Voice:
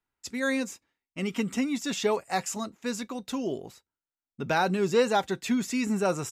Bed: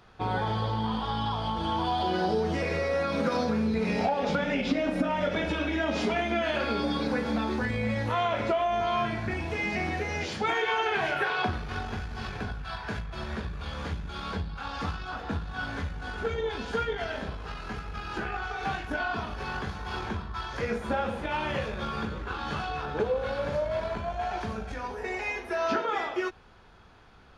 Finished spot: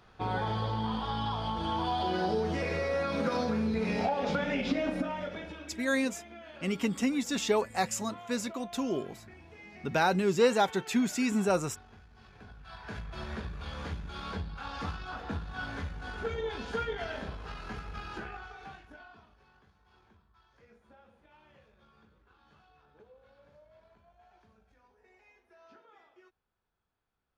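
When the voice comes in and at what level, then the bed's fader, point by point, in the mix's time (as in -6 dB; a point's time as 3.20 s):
5.45 s, -1.0 dB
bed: 4.88 s -3 dB
5.87 s -20.5 dB
12.27 s -20.5 dB
13.07 s -4 dB
18.01 s -4 dB
19.53 s -30.5 dB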